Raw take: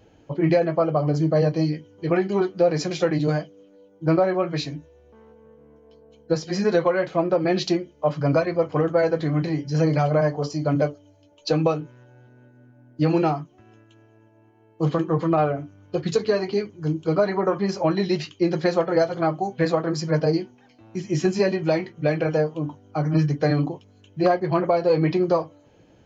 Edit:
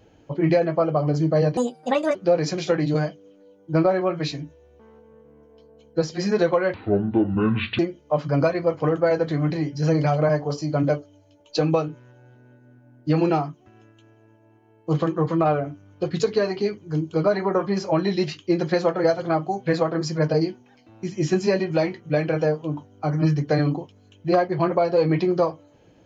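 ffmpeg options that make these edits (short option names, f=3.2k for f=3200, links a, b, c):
-filter_complex "[0:a]asplit=5[a][b][c][d][e];[a]atrim=end=1.574[f];[b]atrim=start=1.57:end=2.48,asetpts=PTS-STARTPTS,asetrate=69237,aresample=44100,atrim=end_sample=25561,asetpts=PTS-STARTPTS[g];[c]atrim=start=2.476:end=7.074[h];[d]atrim=start=7.07:end=7.71,asetpts=PTS-STARTPTS,asetrate=26901,aresample=44100[i];[e]atrim=start=7.706[j];[f][g]acrossfade=d=0.004:c1=hsin:c2=hsin[k];[k][h]acrossfade=d=0.004:c1=hsin:c2=hsin[l];[l][i]acrossfade=d=0.004:c1=hsin:c2=hsin[m];[m][j]acrossfade=d=0.004:c1=hsin:c2=hsin"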